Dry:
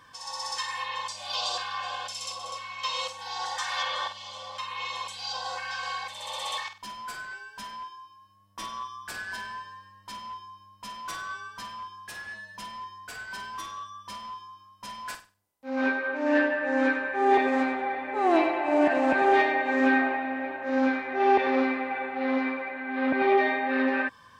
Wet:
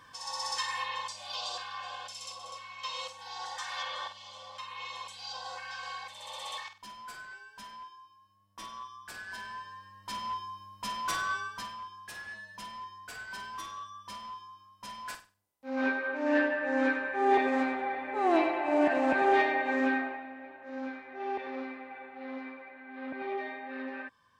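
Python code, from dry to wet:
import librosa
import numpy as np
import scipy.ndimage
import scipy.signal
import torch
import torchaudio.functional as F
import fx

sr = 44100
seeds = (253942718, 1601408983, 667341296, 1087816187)

y = fx.gain(x, sr, db=fx.line((0.77, -1.0), (1.39, -7.0), (9.21, -7.0), (10.32, 4.0), (11.38, 4.0), (11.78, -3.5), (19.72, -3.5), (20.34, -14.0)))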